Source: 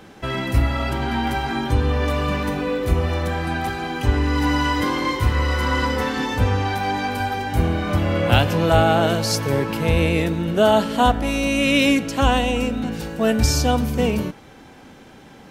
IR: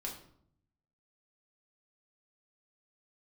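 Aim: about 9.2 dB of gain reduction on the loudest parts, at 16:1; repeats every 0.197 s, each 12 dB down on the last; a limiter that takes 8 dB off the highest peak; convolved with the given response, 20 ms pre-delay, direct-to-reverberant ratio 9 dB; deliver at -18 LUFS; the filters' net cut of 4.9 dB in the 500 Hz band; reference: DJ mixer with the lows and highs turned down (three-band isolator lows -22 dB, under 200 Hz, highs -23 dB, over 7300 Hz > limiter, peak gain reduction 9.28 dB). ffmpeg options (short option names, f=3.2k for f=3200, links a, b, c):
-filter_complex "[0:a]equalizer=f=500:t=o:g=-6,acompressor=threshold=-21dB:ratio=16,alimiter=limit=-20dB:level=0:latency=1,aecho=1:1:197|394|591:0.251|0.0628|0.0157,asplit=2[a][b];[1:a]atrim=start_sample=2205,adelay=20[c];[b][c]afir=irnorm=-1:irlink=0,volume=-8.5dB[d];[a][d]amix=inputs=2:normalize=0,acrossover=split=200 7300:gain=0.0794 1 0.0708[e][f][g];[e][f][g]amix=inputs=3:normalize=0,volume=17dB,alimiter=limit=-10dB:level=0:latency=1"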